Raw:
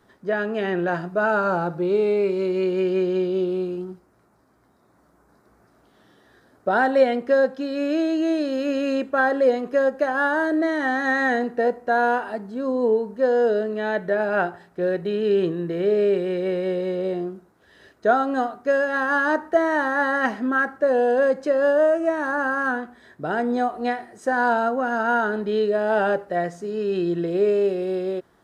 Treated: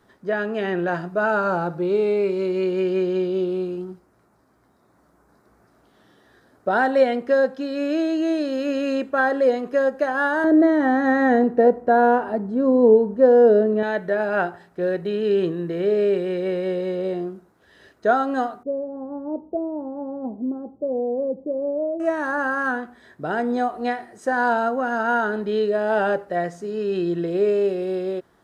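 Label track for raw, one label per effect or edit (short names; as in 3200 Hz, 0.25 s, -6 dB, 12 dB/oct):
10.440000	13.830000	tilt shelf lows +8.5 dB, about 1200 Hz
18.630000	22.000000	Gaussian blur sigma 15 samples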